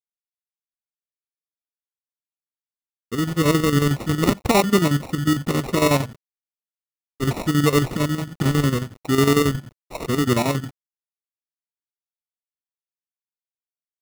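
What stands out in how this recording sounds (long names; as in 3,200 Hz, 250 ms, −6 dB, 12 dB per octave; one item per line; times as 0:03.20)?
a quantiser's noise floor 8 bits, dither none
phaser sweep stages 6, 0.69 Hz, lowest notch 560–1,400 Hz
aliases and images of a low sample rate 1,600 Hz, jitter 0%
chopped level 11 Hz, depth 60%, duty 65%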